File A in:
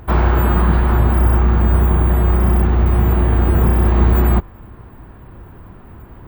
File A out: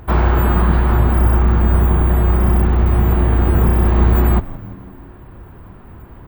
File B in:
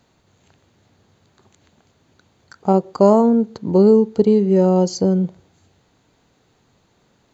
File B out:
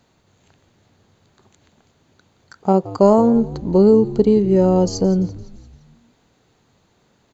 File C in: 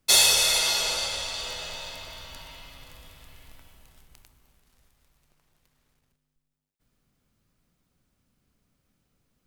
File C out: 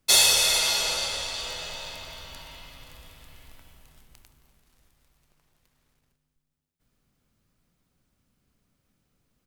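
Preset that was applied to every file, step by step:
echo with shifted repeats 171 ms, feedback 53%, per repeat −84 Hz, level −17 dB

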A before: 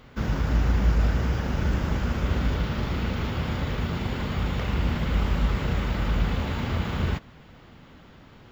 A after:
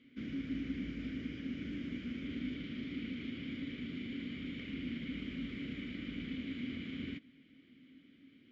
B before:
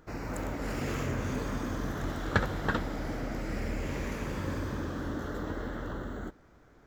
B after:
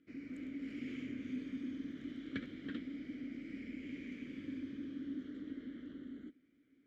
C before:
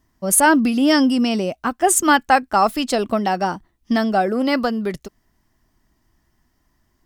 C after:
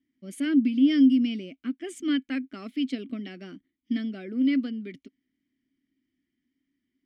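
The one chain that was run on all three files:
formant filter i

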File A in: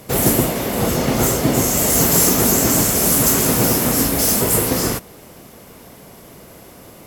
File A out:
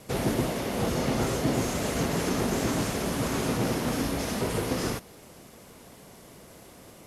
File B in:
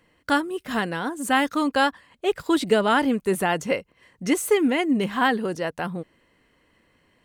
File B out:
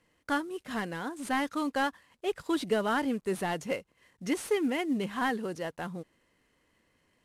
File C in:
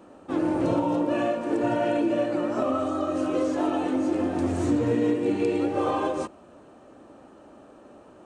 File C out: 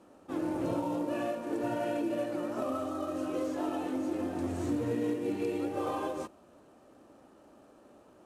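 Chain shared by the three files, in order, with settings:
variable-slope delta modulation 64 kbit/s
dynamic equaliser 7,700 Hz, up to −6 dB, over −48 dBFS, Q 7.9
soft clipping −5 dBFS
level −8 dB

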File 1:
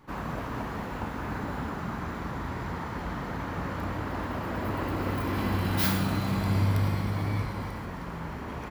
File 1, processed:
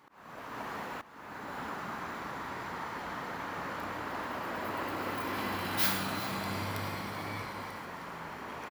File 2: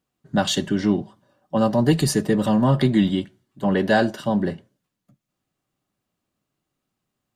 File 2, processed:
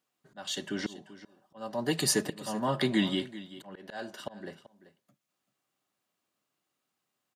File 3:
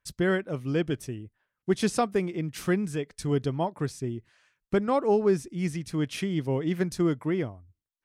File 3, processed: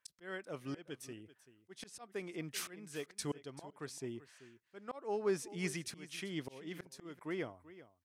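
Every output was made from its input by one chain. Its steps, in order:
high-pass filter 660 Hz 6 dB per octave
volume swells 628 ms
on a send: single-tap delay 386 ms −16.5 dB

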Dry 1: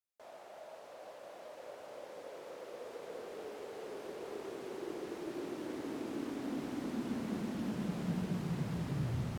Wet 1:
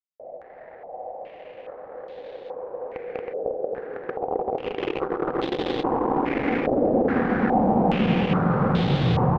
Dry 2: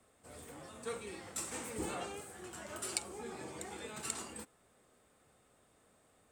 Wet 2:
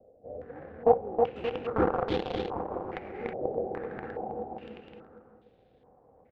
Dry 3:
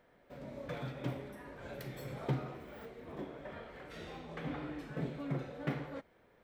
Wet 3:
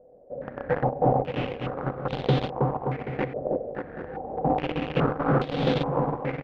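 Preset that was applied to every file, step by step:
running median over 41 samples
in parallel at −5 dB: log-companded quantiser 2 bits
on the sum: high-frequency loss of the air 70 metres
hollow resonant body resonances 500/760 Hz, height 10 dB, ringing for 45 ms
on a send: bouncing-ball delay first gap 320 ms, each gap 0.8×, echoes 5
on the sum: low-pass on a step sequencer 2.4 Hz 610–3,600 Hz
level +5 dB

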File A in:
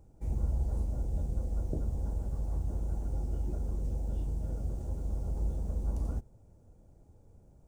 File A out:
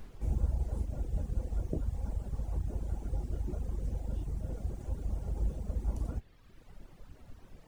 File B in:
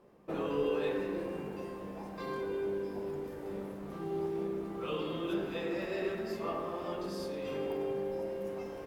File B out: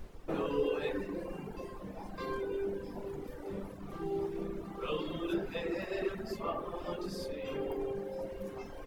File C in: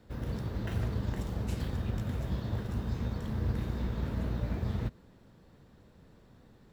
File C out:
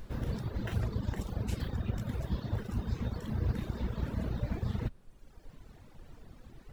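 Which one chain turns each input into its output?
background noise brown −48 dBFS
reverb reduction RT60 1.5 s
level +2 dB

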